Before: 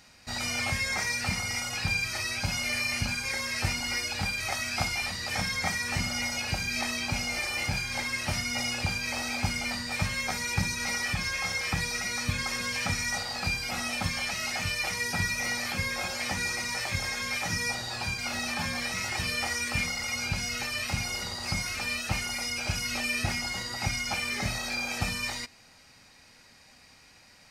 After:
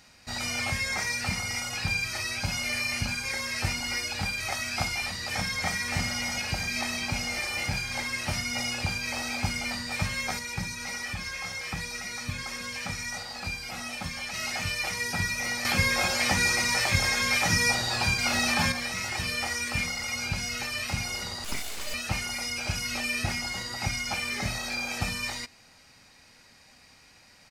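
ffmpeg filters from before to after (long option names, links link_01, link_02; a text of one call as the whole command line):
ffmpeg -i in.wav -filter_complex "[0:a]asplit=2[link_01][link_02];[link_02]afade=type=in:start_time=5.26:duration=0.01,afade=type=out:start_time=5.82:duration=0.01,aecho=0:1:320|640|960|1280|1600|1920|2240|2560|2880|3200|3520|3840:0.334965|0.267972|0.214378|0.171502|0.137202|0.109761|0.0878092|0.0702473|0.0561979|0.0449583|0.0359666|0.0287733[link_03];[link_01][link_03]amix=inputs=2:normalize=0,asettb=1/sr,asplit=3[link_04][link_05][link_06];[link_04]atrim=end=10.394[link_07];[link_05]atrim=start=10.39:end=14.34,asetpts=PTS-STARTPTS,afade=type=in:duration=0.004:curve=qsin,afade=type=out:start_time=3.946:duration=0.004:curve=qsin,flanger=delay=3.4:depth=3.8:regen=-68:speed=1.3:shape=sinusoidal[link_08];[link_06]atrim=start=14.336[link_09];[link_07][link_08]acrossfade=duration=0.004:curve1=hsin:curve2=qsin[link_10];[link_10][link_09]acrossfade=duration=0.004:curve1=qsin:curve2=hsin,asettb=1/sr,asplit=3[link_11][link_12][link_13];[link_11]atrim=end=21.444[link_14];[link_12]atrim=start=21.44:end=21.94,asetpts=PTS-STARTPTS,afade=type=in:duration=0.004:curve=qsin,afade=type=out:start_time=0.496:duration=0.004:curve=qsin,aeval=exprs='abs(val(0))':channel_layout=same[link_15];[link_13]atrim=start=21.936[link_16];[link_14][link_15]acrossfade=duration=0.004:curve1=hsin:curve2=qsin[link_17];[link_17][link_16]acrossfade=duration=0.004:curve1=qsin:curve2=hsin,asplit=3[link_18][link_19][link_20];[link_18]atrim=end=15.652[link_21];[link_19]atrim=start=15.648:end=18.722,asetpts=PTS-STARTPTS,volume=6.5dB[link_22];[link_20]atrim=start=18.718[link_23];[link_21][link_22]acrossfade=duration=0.004:curve1=hsin:curve2=hsin[link_24];[link_24][link_23]acrossfade=duration=0.004:curve1=hsin:curve2=hsin" out.wav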